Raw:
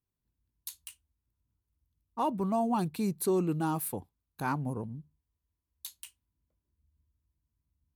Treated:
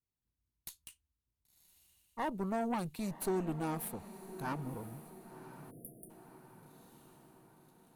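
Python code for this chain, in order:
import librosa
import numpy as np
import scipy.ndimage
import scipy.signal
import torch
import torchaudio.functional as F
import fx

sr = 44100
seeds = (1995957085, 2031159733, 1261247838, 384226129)

y = fx.cheby_harmonics(x, sr, harmonics=(4,), levels_db=(-14,), full_scale_db=-18.5)
y = fx.echo_diffused(y, sr, ms=1057, feedback_pct=53, wet_db=-13.5)
y = fx.spec_erase(y, sr, start_s=5.71, length_s=0.39, low_hz=740.0, high_hz=9000.0)
y = y * 10.0 ** (-6.5 / 20.0)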